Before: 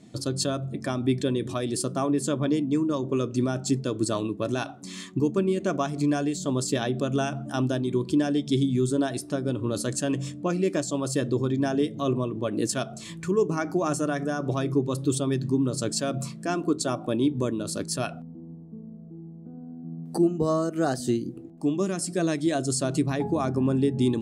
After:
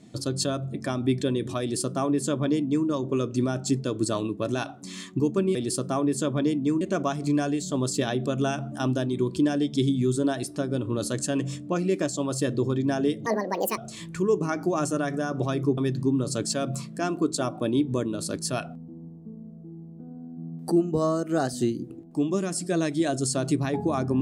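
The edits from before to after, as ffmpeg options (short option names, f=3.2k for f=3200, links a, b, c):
-filter_complex "[0:a]asplit=6[a][b][c][d][e][f];[a]atrim=end=5.552[g];[b]atrim=start=1.608:end=2.872[h];[c]atrim=start=5.548:end=12.004[i];[d]atrim=start=12:end=12.86,asetpts=PTS-STARTPTS,asetrate=73647,aresample=44100,atrim=end_sample=22710,asetpts=PTS-STARTPTS[j];[e]atrim=start=12.856:end=14.862[k];[f]atrim=start=15.238[l];[g][h]acrossfade=d=0.004:c1=hsin:c2=hsin[m];[m][i]acrossfade=d=0.004:c1=hsin:c2=hsin[n];[n][j]acrossfade=d=0.004:c1=hsin:c2=hsin[o];[o][k]acrossfade=d=0.004:c1=hsin:c2=hsin[p];[p][l]acrossfade=d=0.004:c1=hsin:c2=hsin"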